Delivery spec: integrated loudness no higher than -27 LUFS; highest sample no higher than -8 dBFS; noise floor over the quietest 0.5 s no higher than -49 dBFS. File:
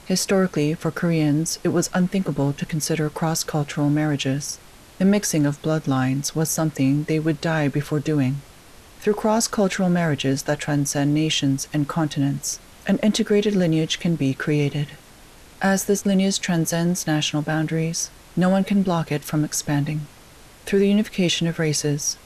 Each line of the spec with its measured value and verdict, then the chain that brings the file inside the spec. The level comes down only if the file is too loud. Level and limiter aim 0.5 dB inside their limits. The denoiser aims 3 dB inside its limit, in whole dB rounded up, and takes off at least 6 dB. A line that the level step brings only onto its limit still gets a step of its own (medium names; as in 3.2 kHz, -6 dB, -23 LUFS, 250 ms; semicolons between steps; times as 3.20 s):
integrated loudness -22.0 LUFS: fail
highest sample -9.5 dBFS: pass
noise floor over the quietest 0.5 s -47 dBFS: fail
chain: trim -5.5 dB